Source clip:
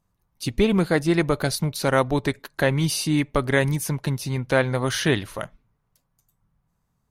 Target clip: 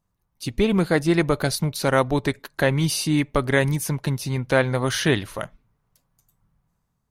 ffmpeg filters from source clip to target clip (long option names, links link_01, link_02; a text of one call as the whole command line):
ffmpeg -i in.wav -af "dynaudnorm=framelen=180:gausssize=7:maxgain=6dB,volume=-3dB" out.wav